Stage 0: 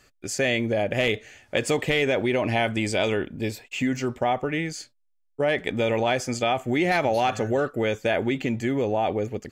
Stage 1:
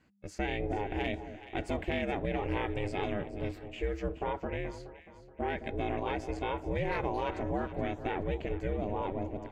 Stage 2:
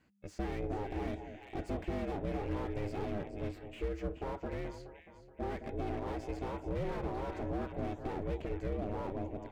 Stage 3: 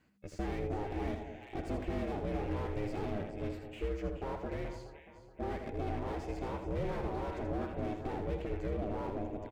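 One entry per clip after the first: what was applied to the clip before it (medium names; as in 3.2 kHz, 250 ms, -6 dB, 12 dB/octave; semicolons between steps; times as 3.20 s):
tone controls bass +7 dB, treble -13 dB; ring modulator 200 Hz; echo whose repeats swap between lows and highs 212 ms, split 820 Hz, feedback 62%, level -10 dB; trim -8.5 dB
slew-rate limiter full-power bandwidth 14 Hz; trim -3 dB
delay 81 ms -7 dB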